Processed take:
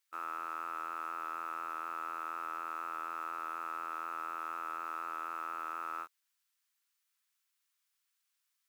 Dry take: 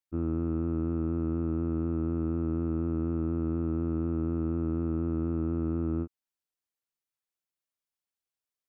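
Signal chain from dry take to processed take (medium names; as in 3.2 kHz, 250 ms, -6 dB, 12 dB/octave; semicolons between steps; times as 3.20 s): high-pass 1.1 kHz 24 dB/octave; in parallel at -3.5 dB: companded quantiser 6-bit; on the sum: trim +10.5 dB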